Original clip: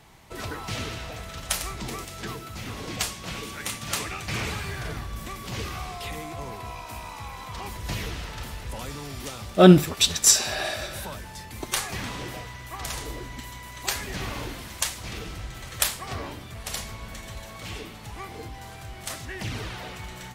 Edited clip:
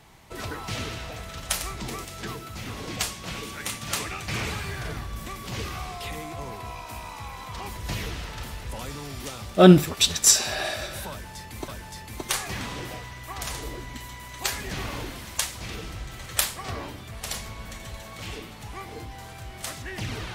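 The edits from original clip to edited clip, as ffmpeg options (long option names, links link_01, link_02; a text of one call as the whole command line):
ffmpeg -i in.wav -filter_complex "[0:a]asplit=2[link_01][link_02];[link_01]atrim=end=11.682[link_03];[link_02]atrim=start=11.108[link_04];[link_03][link_04]acrossfade=duration=0.004:curve1=hsin:curve2=hsin" out.wav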